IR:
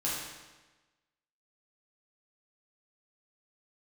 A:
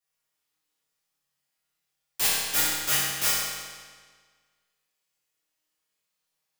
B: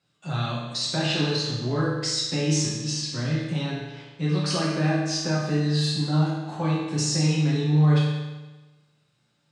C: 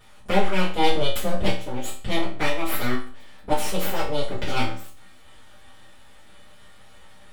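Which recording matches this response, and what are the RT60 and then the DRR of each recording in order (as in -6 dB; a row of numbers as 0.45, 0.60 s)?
B; 1.6, 1.2, 0.40 s; -10.0, -7.5, -10.0 dB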